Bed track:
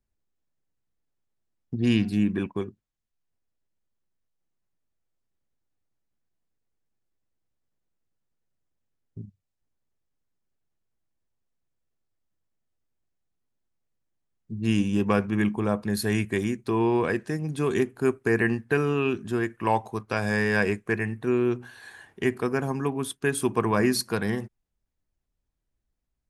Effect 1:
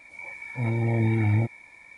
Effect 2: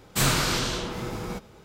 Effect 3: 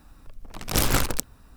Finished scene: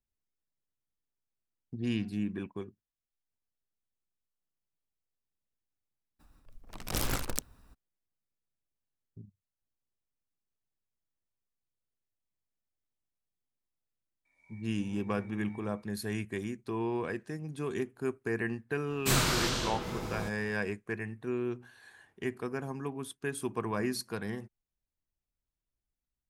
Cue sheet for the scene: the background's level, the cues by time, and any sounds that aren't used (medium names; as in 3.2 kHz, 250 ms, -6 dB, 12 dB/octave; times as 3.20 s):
bed track -10 dB
6.19 s: add 3 -5 dB, fades 0.02 s + random flutter of the level
14.25 s: add 1 -13 dB + feedback comb 88 Hz, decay 0.53 s, mix 90%
18.90 s: add 2 -4.5 dB